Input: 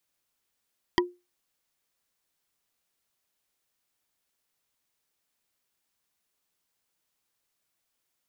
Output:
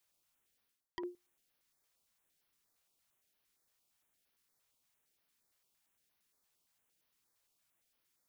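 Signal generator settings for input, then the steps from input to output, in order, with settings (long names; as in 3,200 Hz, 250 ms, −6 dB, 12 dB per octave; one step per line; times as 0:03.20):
struck wood bar, lowest mode 355 Hz, decay 0.25 s, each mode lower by 0.5 dB, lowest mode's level −17 dB
reversed playback
downward compressor 16 to 1, threshold −38 dBFS
reversed playback
notch on a step sequencer 8.7 Hz 240–7,700 Hz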